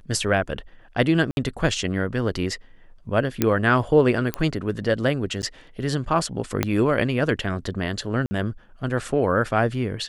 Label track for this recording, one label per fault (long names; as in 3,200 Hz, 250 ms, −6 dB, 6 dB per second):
1.310000	1.370000	drop-out 61 ms
3.420000	3.420000	click −5 dBFS
4.340000	4.340000	click −9 dBFS
5.420000	5.430000	drop-out 9.7 ms
6.630000	6.630000	click −5 dBFS
8.260000	8.310000	drop-out 50 ms